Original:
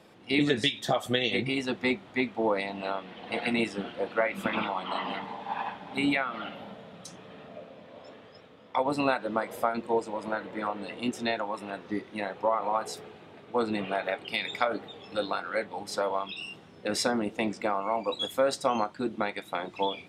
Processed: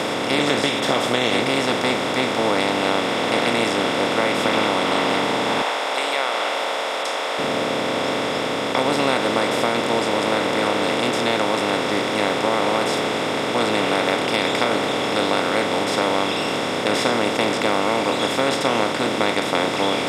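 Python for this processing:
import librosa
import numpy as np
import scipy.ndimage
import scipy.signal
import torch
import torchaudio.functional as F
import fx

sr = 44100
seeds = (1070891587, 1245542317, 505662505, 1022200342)

y = fx.bin_compress(x, sr, power=0.2)
y = fx.cheby1_highpass(y, sr, hz=640.0, order=2, at=(5.62, 7.39))
y = F.gain(torch.from_numpy(y), -2.0).numpy()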